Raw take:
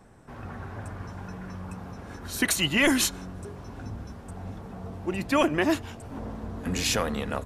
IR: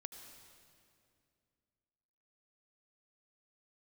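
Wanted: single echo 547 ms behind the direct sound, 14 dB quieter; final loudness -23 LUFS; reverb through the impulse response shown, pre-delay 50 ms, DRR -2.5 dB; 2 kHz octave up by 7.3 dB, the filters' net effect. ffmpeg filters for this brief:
-filter_complex "[0:a]equalizer=f=2000:t=o:g=8.5,aecho=1:1:547:0.2,asplit=2[s0][s1];[1:a]atrim=start_sample=2205,adelay=50[s2];[s1][s2]afir=irnorm=-1:irlink=0,volume=2.24[s3];[s0][s3]amix=inputs=2:normalize=0,volume=0.596"

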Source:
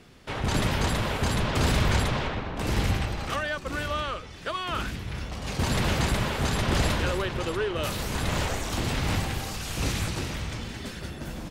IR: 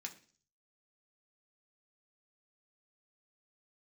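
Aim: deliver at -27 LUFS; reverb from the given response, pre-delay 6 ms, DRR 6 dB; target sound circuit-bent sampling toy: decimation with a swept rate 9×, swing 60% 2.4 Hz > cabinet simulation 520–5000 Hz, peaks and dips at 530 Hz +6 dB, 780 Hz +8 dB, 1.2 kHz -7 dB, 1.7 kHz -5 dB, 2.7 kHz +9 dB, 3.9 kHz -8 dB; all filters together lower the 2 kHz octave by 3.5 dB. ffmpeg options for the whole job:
-filter_complex "[0:a]equalizer=f=2000:t=o:g=-6.5,asplit=2[s0][s1];[1:a]atrim=start_sample=2205,adelay=6[s2];[s1][s2]afir=irnorm=-1:irlink=0,volume=0.708[s3];[s0][s3]amix=inputs=2:normalize=0,acrusher=samples=9:mix=1:aa=0.000001:lfo=1:lforange=5.4:lforate=2.4,highpass=520,equalizer=f=530:t=q:w=4:g=6,equalizer=f=780:t=q:w=4:g=8,equalizer=f=1200:t=q:w=4:g=-7,equalizer=f=1700:t=q:w=4:g=-5,equalizer=f=2700:t=q:w=4:g=9,equalizer=f=3900:t=q:w=4:g=-8,lowpass=f=5000:w=0.5412,lowpass=f=5000:w=1.3066,volume=1.68"

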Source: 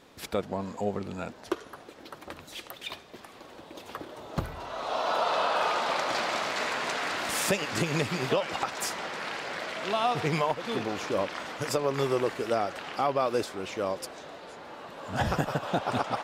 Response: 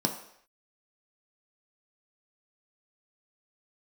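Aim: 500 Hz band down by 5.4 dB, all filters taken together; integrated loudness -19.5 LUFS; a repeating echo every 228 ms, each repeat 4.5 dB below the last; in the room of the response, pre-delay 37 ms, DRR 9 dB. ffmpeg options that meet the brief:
-filter_complex "[0:a]equalizer=f=500:t=o:g=-7,aecho=1:1:228|456|684|912|1140|1368|1596|1824|2052:0.596|0.357|0.214|0.129|0.0772|0.0463|0.0278|0.0167|0.01,asplit=2[s0][s1];[1:a]atrim=start_sample=2205,adelay=37[s2];[s1][s2]afir=irnorm=-1:irlink=0,volume=0.15[s3];[s0][s3]amix=inputs=2:normalize=0,volume=3.16"

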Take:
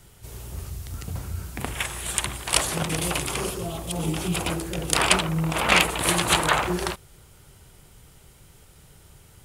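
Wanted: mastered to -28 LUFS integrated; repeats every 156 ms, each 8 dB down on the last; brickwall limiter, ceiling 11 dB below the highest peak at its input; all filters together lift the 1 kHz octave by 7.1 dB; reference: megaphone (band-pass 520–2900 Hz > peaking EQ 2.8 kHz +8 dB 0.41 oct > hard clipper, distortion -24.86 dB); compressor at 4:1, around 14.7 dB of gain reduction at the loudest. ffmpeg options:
-af "equalizer=f=1000:t=o:g=9,acompressor=threshold=0.0355:ratio=4,alimiter=limit=0.0841:level=0:latency=1,highpass=520,lowpass=2900,equalizer=f=2800:t=o:w=0.41:g=8,aecho=1:1:156|312|468|624|780:0.398|0.159|0.0637|0.0255|0.0102,asoftclip=type=hard:threshold=0.0596,volume=2.24"

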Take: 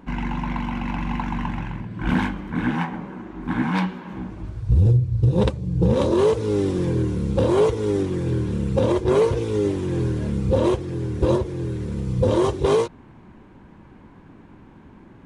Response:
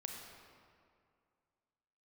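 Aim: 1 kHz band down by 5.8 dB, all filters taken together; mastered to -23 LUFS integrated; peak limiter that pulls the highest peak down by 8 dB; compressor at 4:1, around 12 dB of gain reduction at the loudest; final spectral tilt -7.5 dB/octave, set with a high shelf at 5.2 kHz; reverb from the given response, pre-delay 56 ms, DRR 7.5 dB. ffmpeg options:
-filter_complex "[0:a]equalizer=f=1000:t=o:g=-6.5,highshelf=f=5200:g=-6.5,acompressor=threshold=0.0398:ratio=4,alimiter=level_in=1.33:limit=0.0631:level=0:latency=1,volume=0.75,asplit=2[s0][s1];[1:a]atrim=start_sample=2205,adelay=56[s2];[s1][s2]afir=irnorm=-1:irlink=0,volume=0.531[s3];[s0][s3]amix=inputs=2:normalize=0,volume=3.55"

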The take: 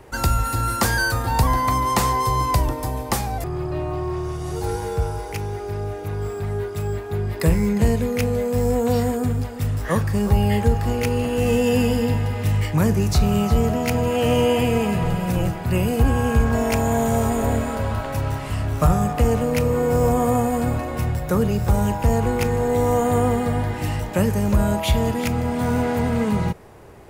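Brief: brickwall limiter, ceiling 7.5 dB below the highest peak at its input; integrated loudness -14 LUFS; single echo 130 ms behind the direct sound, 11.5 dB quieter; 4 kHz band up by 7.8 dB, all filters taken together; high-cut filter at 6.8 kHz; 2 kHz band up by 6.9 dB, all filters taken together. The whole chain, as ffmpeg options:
-af "lowpass=6800,equalizer=f=2000:t=o:g=7,equalizer=f=4000:t=o:g=8.5,alimiter=limit=0.299:level=0:latency=1,aecho=1:1:130:0.266,volume=2.24"

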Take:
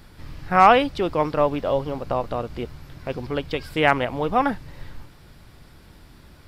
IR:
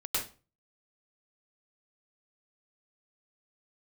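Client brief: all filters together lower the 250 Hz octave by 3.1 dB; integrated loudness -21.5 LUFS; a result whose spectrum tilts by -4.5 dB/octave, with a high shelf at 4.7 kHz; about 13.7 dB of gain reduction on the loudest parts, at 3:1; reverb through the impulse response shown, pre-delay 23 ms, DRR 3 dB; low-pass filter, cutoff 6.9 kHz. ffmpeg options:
-filter_complex "[0:a]lowpass=6900,equalizer=f=250:t=o:g=-4,highshelf=f=4700:g=-7.5,acompressor=threshold=0.0398:ratio=3,asplit=2[s0][s1];[1:a]atrim=start_sample=2205,adelay=23[s2];[s1][s2]afir=irnorm=-1:irlink=0,volume=0.355[s3];[s0][s3]amix=inputs=2:normalize=0,volume=2.82"

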